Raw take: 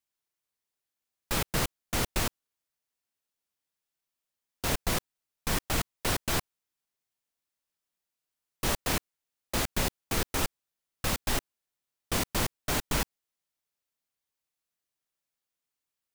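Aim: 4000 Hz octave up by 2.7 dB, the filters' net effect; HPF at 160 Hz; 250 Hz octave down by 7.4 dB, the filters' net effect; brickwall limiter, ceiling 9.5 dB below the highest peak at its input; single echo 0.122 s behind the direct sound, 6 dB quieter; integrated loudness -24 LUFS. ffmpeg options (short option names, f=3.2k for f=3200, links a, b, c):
-af "highpass=160,equalizer=f=250:t=o:g=-9,equalizer=f=4k:t=o:g=3.5,alimiter=level_in=1dB:limit=-24dB:level=0:latency=1,volume=-1dB,aecho=1:1:122:0.501,volume=12dB"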